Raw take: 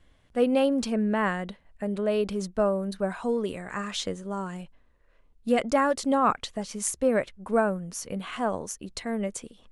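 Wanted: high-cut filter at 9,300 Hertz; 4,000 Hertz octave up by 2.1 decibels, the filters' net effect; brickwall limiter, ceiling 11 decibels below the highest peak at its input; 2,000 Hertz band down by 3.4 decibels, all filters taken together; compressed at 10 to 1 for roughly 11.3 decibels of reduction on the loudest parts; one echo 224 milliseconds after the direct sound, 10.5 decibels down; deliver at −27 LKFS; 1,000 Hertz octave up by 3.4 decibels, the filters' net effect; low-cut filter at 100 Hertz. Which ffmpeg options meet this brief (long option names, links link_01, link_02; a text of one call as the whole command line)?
ffmpeg -i in.wav -af "highpass=100,lowpass=9300,equalizer=frequency=1000:width_type=o:gain=6,equalizer=frequency=2000:width_type=o:gain=-8,equalizer=frequency=4000:width_type=o:gain=5,acompressor=threshold=-28dB:ratio=10,alimiter=level_in=1.5dB:limit=-24dB:level=0:latency=1,volume=-1.5dB,aecho=1:1:224:0.299,volume=8dB" out.wav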